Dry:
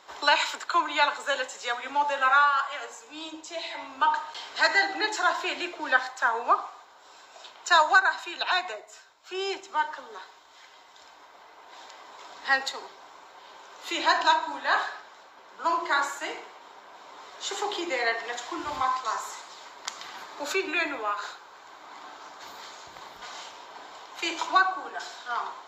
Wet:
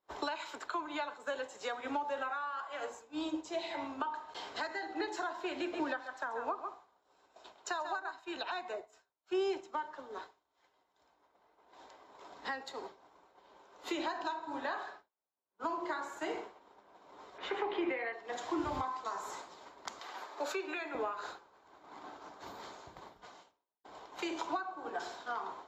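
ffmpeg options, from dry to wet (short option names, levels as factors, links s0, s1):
-filter_complex "[0:a]asettb=1/sr,asplit=3[s0][s1][s2];[s0]atrim=end=5.594[s3];[s1]atrim=start=5.59:end=8.11,asetpts=PTS-STARTPTS,afade=t=in:d=0.004:c=qsin,afade=t=out:st=2.516:d=0.004:c=qsin,aecho=1:1:136:0.376,atrim=end_sample=111132[s4];[s2]atrim=start=8.106[s5];[s3][s4]acrossfade=d=0.004:c1=hsin:c2=qsin[s6];[s6][s5]acrossfade=d=0.004:c1=qsin:c2=hsin,asettb=1/sr,asplit=3[s7][s8][s9];[s7]atrim=end=17.384[s10];[s8]atrim=start=17.38:end=18.13,asetpts=PTS-STARTPTS,afade=t=in:d=0.004:c=qsin,afade=t=out:st=0.746:d=0.004:c=qsin,lowpass=f=2300:t=q:w=2.7[s11];[s9]atrim=start=18.126[s12];[s10][s11]acrossfade=d=0.004:c1=hsin:c2=qsin[s13];[s13][s12]acrossfade=d=0.004:c1=qsin:c2=hsin,asettb=1/sr,asplit=3[s14][s15][s16];[s14]atrim=end=19.994[s17];[s15]atrim=start=19.99:end=20.95,asetpts=PTS-STARTPTS,afade=t=in:d=0.004:c=qsin,afade=t=out:st=0.956:d=0.004:c=qsin,highpass=500[s18];[s16]atrim=start=20.946[s19];[s17][s18]acrossfade=d=0.004:c1=hsin:c2=qsin[s20];[s20][s19]acrossfade=d=0.004:c1=qsin:c2=hsin,asplit=4[s21][s22][s23][s24];[s21]atrim=end=15.09,asetpts=PTS-STARTPTS,afade=t=out:st=14.9:d=0.19:silence=0.211349[s25];[s22]atrim=start=15.09:end=15.49,asetpts=PTS-STARTPTS,volume=0.211[s26];[s23]atrim=start=15.49:end=23.84,asetpts=PTS-STARTPTS,afade=t=in:d=0.19:silence=0.211349,afade=t=out:st=7.4:d=0.95[s27];[s24]atrim=start=23.84,asetpts=PTS-STARTPTS,afade=t=in:d=0.004:c=hsin[s28];[s25][s26][s27][s28]concat=n=4:v=0:a=1,acompressor=threshold=0.0224:ratio=12,agate=range=0.0224:threshold=0.0112:ratio=3:detection=peak,tiltshelf=f=730:g=8,volume=1.12"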